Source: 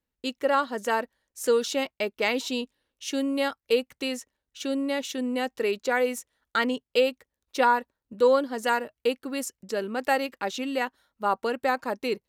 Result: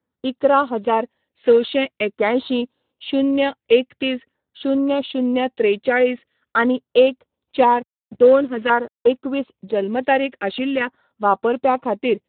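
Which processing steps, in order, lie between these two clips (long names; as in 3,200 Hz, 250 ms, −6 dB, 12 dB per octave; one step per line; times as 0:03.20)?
0:07.57–0:09.14: slack as between gear wheels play −35 dBFS
auto-filter notch saw down 0.46 Hz 770–2,800 Hz
level +9 dB
Speex 11 kbit/s 8,000 Hz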